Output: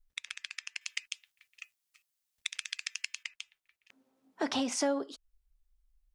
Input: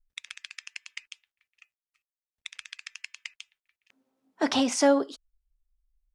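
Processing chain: 0.81–3.23 s: treble shelf 2.2 kHz +11 dB; compression 2:1, threshold -39 dBFS, peak gain reduction 12.5 dB; trim +2.5 dB

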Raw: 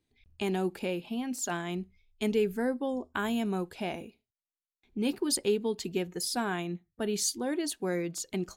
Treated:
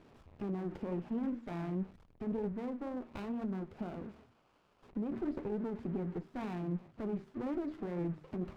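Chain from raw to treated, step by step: zero-crossing glitches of -27 dBFS; low-pass 1.7 kHz 24 dB/octave; peaking EQ 110 Hz +10.5 dB 2.7 oct; de-hum 77.24 Hz, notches 5; 2.48–5.12 s: compression 4:1, threshold -33 dBFS, peak gain reduction 11 dB; peak limiter -26.5 dBFS, peak gain reduction 13 dB; flange 2 Hz, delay 3.3 ms, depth 8.6 ms, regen -63%; sliding maximum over 17 samples; trim +1.5 dB

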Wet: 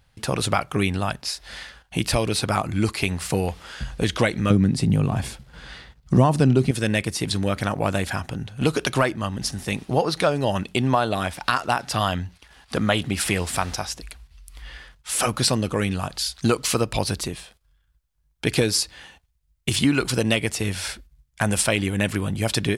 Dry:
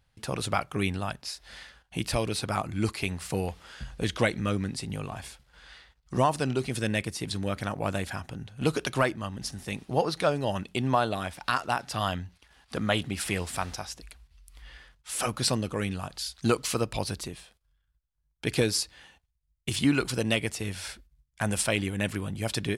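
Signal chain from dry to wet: 4.50–6.71 s: peaking EQ 160 Hz +12.5 dB 2.8 oct; compression 2:1, threshold -27 dBFS, peak gain reduction 9 dB; trim +8.5 dB

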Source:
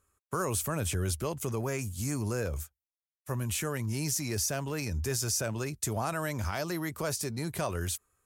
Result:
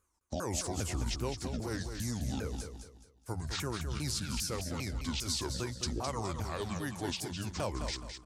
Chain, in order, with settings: sawtooth pitch modulation -12 st, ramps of 400 ms; feedback delay 211 ms, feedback 32%, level -7.5 dB; trim -3 dB

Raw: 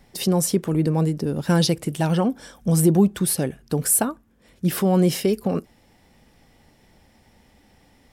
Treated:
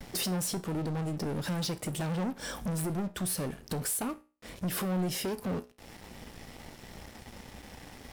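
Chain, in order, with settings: compression 10:1, threshold -33 dBFS, peak gain reduction 21 dB; gate with hold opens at -49 dBFS; waveshaping leveller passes 5; feedback comb 61 Hz, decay 0.35 s, harmonics all, mix 50%; trim -4.5 dB

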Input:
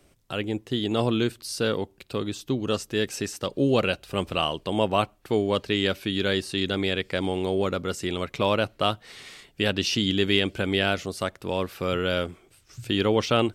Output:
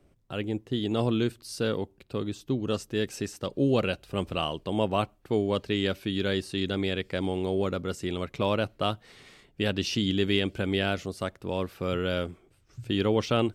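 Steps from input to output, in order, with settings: bass shelf 470 Hz +5 dB; tape noise reduction on one side only decoder only; trim -5.5 dB

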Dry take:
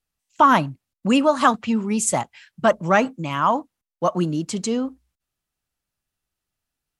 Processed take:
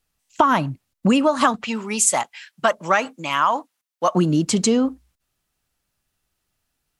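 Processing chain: 1.64–4.15 s: high-pass 1.1 kHz 6 dB/octave; compression 12:1, threshold -21 dBFS, peak gain reduction 12 dB; trim +8 dB

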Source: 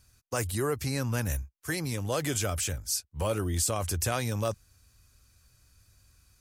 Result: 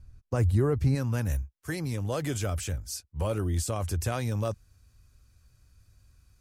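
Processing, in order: tilt EQ -4 dB/octave, from 0.94 s -1.5 dB/octave; trim -2.5 dB

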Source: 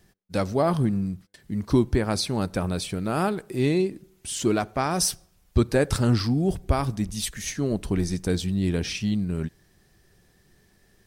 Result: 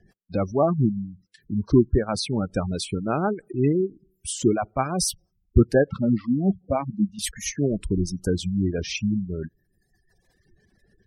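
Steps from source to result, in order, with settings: reverb removal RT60 1.5 s; spectral gate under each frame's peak -20 dB strong; 3.44–4.79 s: peaking EQ 1.8 kHz -3.5 dB 2.4 oct; rotary cabinet horn 6 Hz; 5.88–7.19 s: cabinet simulation 190–2400 Hz, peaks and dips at 200 Hz +9 dB, 390 Hz -7 dB, 580 Hz +7 dB, 1.4 kHz -9 dB; trim +4.5 dB

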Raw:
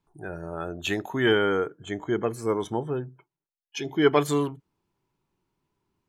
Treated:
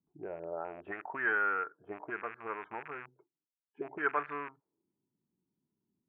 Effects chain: rattle on loud lows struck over -36 dBFS, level -21 dBFS; low-pass 1.9 kHz 24 dB/octave; auto-wah 220–1500 Hz, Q 2.5, up, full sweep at -25 dBFS

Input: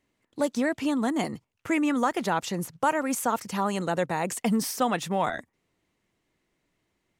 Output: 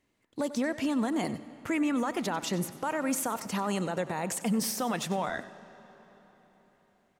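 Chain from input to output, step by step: peak limiter -21.5 dBFS, peak gain reduction 9 dB; on a send: delay 94 ms -16 dB; on the sum: algorithmic reverb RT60 4.4 s, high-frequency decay 0.75×, pre-delay 45 ms, DRR 16 dB

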